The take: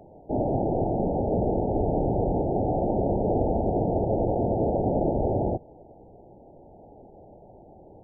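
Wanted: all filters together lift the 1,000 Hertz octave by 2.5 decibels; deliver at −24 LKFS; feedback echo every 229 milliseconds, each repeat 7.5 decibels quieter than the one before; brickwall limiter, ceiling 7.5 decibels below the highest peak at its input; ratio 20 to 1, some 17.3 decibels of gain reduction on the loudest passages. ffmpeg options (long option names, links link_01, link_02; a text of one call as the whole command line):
ffmpeg -i in.wav -af "equalizer=frequency=1000:width_type=o:gain=4,acompressor=threshold=-37dB:ratio=20,alimiter=level_in=10.5dB:limit=-24dB:level=0:latency=1,volume=-10.5dB,aecho=1:1:229|458|687|916|1145:0.422|0.177|0.0744|0.0312|0.0131,volume=20dB" out.wav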